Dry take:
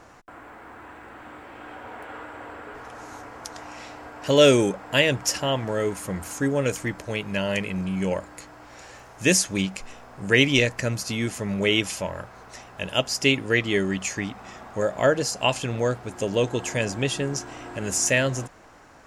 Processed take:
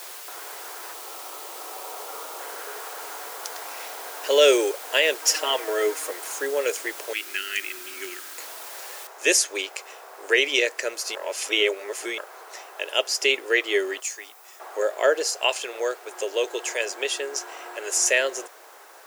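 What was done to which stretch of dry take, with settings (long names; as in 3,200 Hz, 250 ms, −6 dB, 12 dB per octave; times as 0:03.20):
0:00.93–0:02.40: gain on a spectral selection 1,400–5,100 Hz −13 dB
0:05.21–0:06.11: comb filter 6.4 ms, depth 98%
0:07.13–0:08.38: linear-phase brick-wall band-stop 390–1,200 Hz
0:09.07: noise floor change −42 dB −56 dB
0:11.15–0:12.18: reverse
0:14.00–0:14.60: first-order pre-emphasis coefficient 0.8
0:15.33–0:17.96: low-shelf EQ 300 Hz −8 dB
whole clip: elliptic high-pass filter 380 Hz, stop band 50 dB; dynamic equaliser 910 Hz, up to −5 dB, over −40 dBFS, Q 1.2; boost into a limiter +9 dB; level −6 dB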